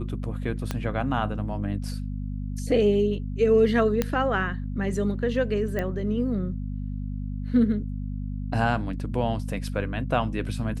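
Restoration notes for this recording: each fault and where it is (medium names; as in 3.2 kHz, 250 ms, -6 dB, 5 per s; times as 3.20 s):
hum 50 Hz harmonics 5 -31 dBFS
0.71 s: pop -13 dBFS
4.02 s: pop -10 dBFS
5.79 s: pop -16 dBFS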